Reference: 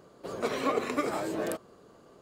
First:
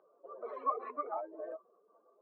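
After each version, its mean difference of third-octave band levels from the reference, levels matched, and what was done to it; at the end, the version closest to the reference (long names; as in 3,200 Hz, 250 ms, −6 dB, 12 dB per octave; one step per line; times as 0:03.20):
16.0 dB: expanding power law on the bin magnitudes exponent 2.4
four-pole ladder band-pass 1,100 Hz, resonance 35%
level +8 dB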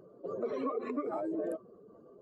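10.5 dB: expanding power law on the bin magnitudes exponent 2.1
downward compressor, threshold −31 dBFS, peak gain reduction 8 dB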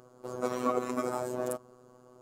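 4.0 dB: flat-topped bell 2,800 Hz −9.5 dB
phases set to zero 125 Hz
level +1.5 dB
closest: third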